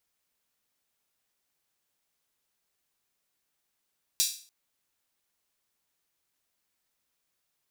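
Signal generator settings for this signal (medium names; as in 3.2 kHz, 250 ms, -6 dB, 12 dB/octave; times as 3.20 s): open hi-hat length 0.29 s, high-pass 4.4 kHz, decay 0.42 s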